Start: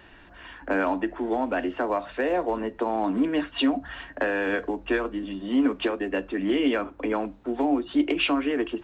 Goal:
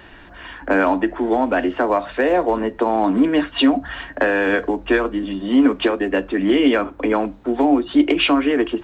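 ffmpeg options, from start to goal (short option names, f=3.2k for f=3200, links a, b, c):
-af "bandreject=f=2.7k:w=29,volume=8dB"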